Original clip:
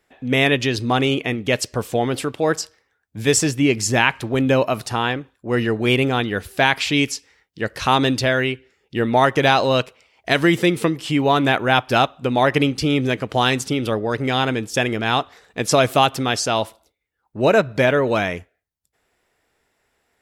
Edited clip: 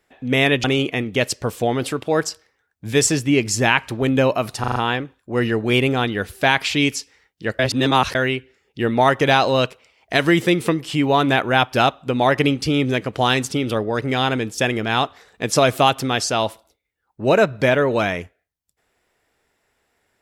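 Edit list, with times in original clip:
0:00.64–0:00.96: remove
0:04.92: stutter 0.04 s, 5 plays
0:07.75–0:08.31: reverse

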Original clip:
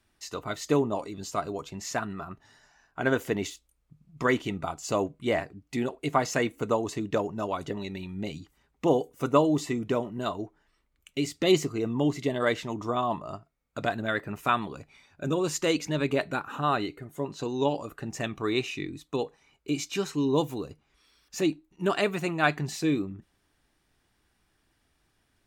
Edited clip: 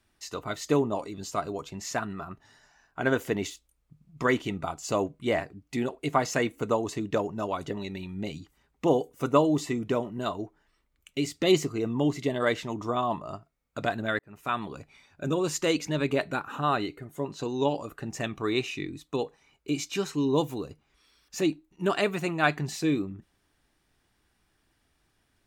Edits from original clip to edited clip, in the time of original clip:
0:14.19–0:14.74: fade in

